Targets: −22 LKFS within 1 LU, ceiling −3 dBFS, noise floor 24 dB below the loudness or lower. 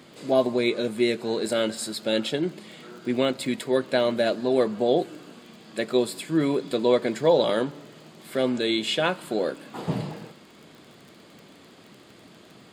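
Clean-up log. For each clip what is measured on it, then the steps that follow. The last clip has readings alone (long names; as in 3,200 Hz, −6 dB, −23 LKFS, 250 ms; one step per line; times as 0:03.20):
crackle rate 28 per second; integrated loudness −25.0 LKFS; sample peak −8.5 dBFS; target loudness −22.0 LKFS
→ click removal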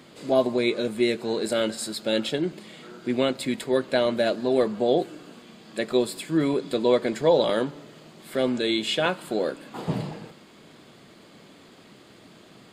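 crackle rate 0 per second; integrated loudness −25.0 LKFS; sample peak −8.5 dBFS; target loudness −22.0 LKFS
→ level +3 dB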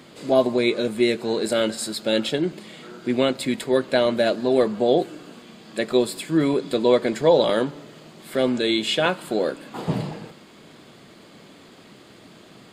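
integrated loudness −22.0 LKFS; sample peak −5.5 dBFS; background noise floor −48 dBFS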